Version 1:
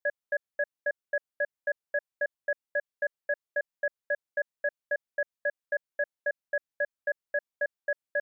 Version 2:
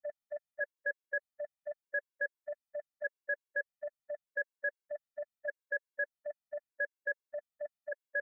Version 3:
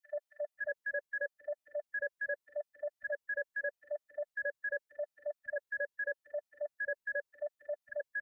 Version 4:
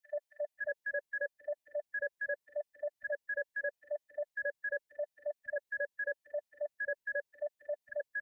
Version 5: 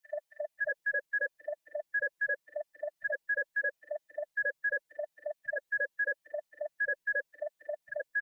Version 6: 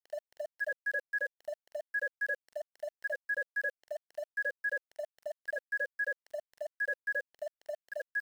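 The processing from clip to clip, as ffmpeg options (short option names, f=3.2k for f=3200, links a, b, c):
-af "afftfilt=real='re*gt(sin(2*PI*0.82*pts/sr)*(1-2*mod(floor(b*sr/1024/290),2)),0)':imag='im*gt(sin(2*PI*0.82*pts/sr)*(1-2*mod(floor(b*sr/1024/290),2)),0)':win_size=1024:overlap=0.75,volume=-2.5dB"
-filter_complex "[0:a]acrossover=split=250|1600[a][b][c];[b]adelay=80[d];[a]adelay=550[e];[e][d][c]amix=inputs=3:normalize=0,volume=2.5dB"
-af "equalizer=f=1.3k:t=o:w=0.26:g=-9.5,volume=1dB"
-af "aecho=1:1:6.1:0.68,volume=3.5dB"
-af "aeval=exprs='val(0)*gte(abs(val(0)),0.00473)':c=same,volume=-2dB"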